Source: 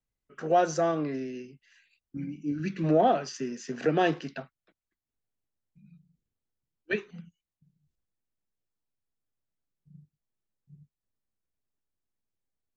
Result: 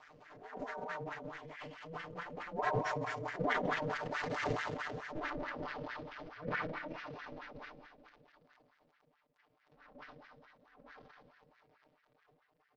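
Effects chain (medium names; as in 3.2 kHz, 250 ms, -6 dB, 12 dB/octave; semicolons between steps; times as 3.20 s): one-bit delta coder 32 kbps, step -25.5 dBFS; Doppler pass-by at 4.63 s, 45 m/s, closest 5.3 m; on a send: feedback delay 106 ms, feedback 46%, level -8 dB; on the sum: Schroeder reverb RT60 2.4 s, combs from 29 ms, DRR 3 dB; in parallel at -1.5 dB: gain riding within 4 dB; on the sum: wah-wah 4.6 Hz 320–1800 Hz, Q 5.8; transient shaper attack -11 dB, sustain +10 dB; comb 6.7 ms, depth 82%; ring modulator 160 Hz; trim +16 dB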